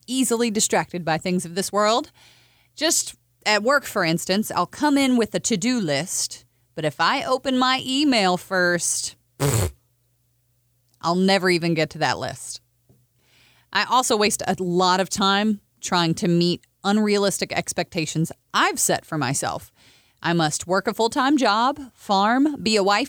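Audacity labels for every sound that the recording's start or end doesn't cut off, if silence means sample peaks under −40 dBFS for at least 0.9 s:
11.010000	12.570000	sound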